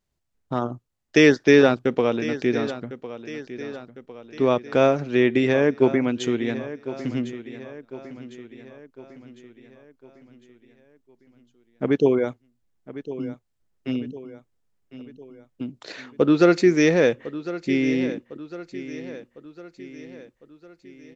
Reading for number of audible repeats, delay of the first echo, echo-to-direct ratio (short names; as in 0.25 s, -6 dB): 4, 1.054 s, -13.5 dB